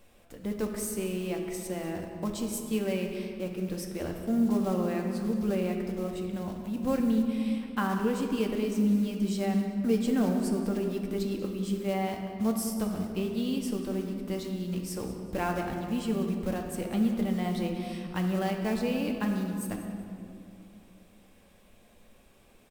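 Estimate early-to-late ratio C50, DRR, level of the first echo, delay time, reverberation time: 4.5 dB, 1.5 dB, -14.5 dB, 190 ms, 2.3 s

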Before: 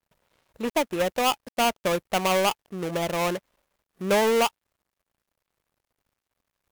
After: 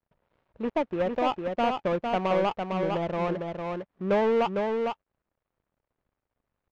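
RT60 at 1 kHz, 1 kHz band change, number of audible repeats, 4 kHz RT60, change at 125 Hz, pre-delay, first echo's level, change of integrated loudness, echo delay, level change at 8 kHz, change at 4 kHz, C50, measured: no reverb, -2.0 dB, 1, no reverb, +0.5 dB, no reverb, -4.5 dB, -3.0 dB, 454 ms, under -20 dB, -11.0 dB, no reverb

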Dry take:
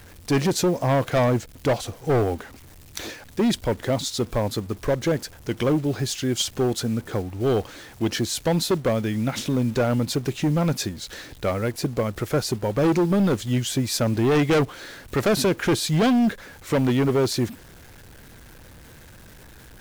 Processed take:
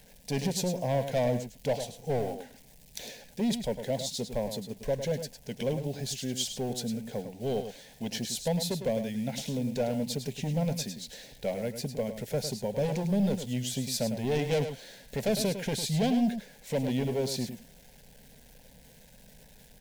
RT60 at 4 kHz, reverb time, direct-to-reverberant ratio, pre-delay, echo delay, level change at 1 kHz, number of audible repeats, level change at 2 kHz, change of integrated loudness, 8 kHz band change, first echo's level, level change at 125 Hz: no reverb, no reverb, no reverb, no reverb, 104 ms, -10.0 dB, 1, -11.5 dB, -8.0 dB, -6.0 dB, -9.0 dB, -8.5 dB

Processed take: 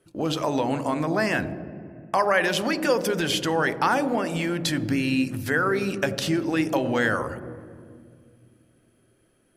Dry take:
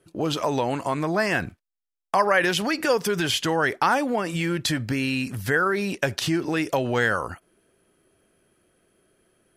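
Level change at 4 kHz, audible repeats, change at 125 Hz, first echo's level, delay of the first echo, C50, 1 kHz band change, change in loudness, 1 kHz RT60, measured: -1.5 dB, no echo, -0.5 dB, no echo, no echo, 12.5 dB, -1.0 dB, -0.5 dB, 1.8 s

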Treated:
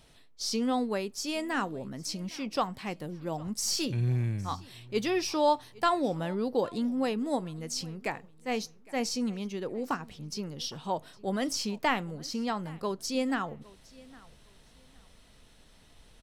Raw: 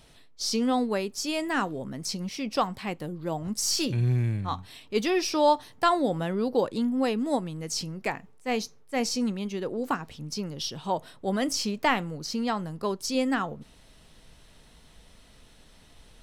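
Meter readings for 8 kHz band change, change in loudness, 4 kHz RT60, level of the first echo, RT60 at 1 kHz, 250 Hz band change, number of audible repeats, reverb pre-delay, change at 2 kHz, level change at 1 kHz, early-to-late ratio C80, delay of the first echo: -3.5 dB, -3.5 dB, no reverb, -23.0 dB, no reverb, -3.5 dB, 1, no reverb, -3.5 dB, -3.5 dB, no reverb, 810 ms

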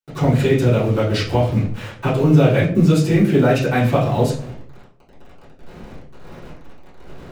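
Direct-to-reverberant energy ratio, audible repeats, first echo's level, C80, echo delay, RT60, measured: -11.0 dB, no echo, no echo, 11.0 dB, no echo, 0.55 s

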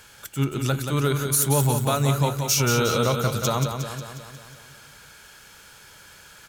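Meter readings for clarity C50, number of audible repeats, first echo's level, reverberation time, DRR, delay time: no reverb, 7, -6.5 dB, no reverb, no reverb, 180 ms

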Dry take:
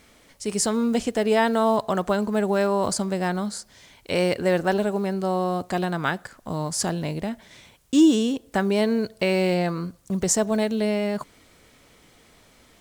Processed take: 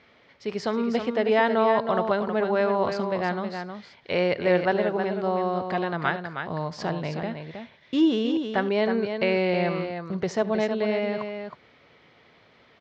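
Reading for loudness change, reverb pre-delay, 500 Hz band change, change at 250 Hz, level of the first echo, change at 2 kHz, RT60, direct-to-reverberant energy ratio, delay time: -2.0 dB, no reverb, 0.0 dB, -4.0 dB, -20.0 dB, +1.0 dB, no reverb, no reverb, 74 ms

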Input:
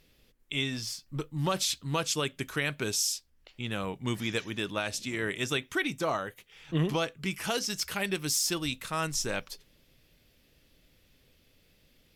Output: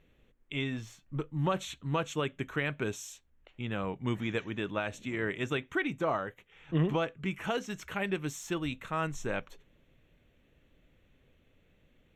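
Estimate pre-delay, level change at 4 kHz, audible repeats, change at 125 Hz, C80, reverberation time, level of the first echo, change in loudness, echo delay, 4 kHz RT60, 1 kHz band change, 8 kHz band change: no reverb, -10.5 dB, no echo, 0.0 dB, no reverb, no reverb, no echo, -3.0 dB, no echo, no reverb, -0.5 dB, -14.5 dB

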